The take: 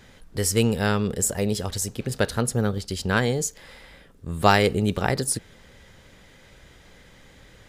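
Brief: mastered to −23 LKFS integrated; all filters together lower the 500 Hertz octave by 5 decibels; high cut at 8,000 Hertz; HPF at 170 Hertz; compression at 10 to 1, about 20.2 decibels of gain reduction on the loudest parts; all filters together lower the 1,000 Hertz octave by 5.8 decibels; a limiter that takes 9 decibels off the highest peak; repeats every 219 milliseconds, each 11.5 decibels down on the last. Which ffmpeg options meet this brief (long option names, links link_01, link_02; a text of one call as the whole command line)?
ffmpeg -i in.wav -af "highpass=170,lowpass=8000,equalizer=frequency=500:width_type=o:gain=-4.5,equalizer=frequency=1000:width_type=o:gain=-6.5,acompressor=threshold=-36dB:ratio=10,alimiter=level_in=5.5dB:limit=-24dB:level=0:latency=1,volume=-5.5dB,aecho=1:1:219|438|657:0.266|0.0718|0.0194,volume=19.5dB" out.wav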